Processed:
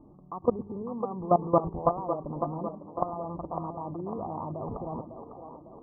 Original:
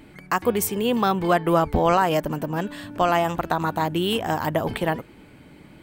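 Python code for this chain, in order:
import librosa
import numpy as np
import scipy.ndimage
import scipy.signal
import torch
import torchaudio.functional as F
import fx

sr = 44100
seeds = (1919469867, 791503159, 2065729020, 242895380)

y = scipy.signal.sosfilt(scipy.signal.cheby1(8, 1.0, 1200.0, 'lowpass', fs=sr, output='sos'), x)
y = fx.level_steps(y, sr, step_db=18)
y = fx.echo_split(y, sr, split_hz=300.0, low_ms=109, high_ms=552, feedback_pct=52, wet_db=-8.0)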